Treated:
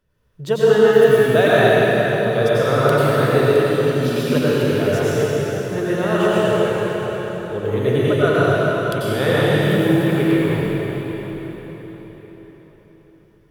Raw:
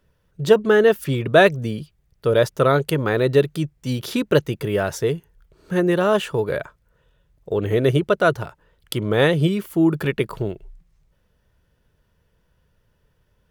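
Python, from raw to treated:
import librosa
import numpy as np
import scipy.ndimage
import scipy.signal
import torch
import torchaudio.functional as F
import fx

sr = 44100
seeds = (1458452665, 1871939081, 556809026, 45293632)

y = fx.rev_plate(x, sr, seeds[0], rt60_s=4.8, hf_ratio=0.85, predelay_ms=80, drr_db=-9.5)
y = y * 10.0 ** (-6.5 / 20.0)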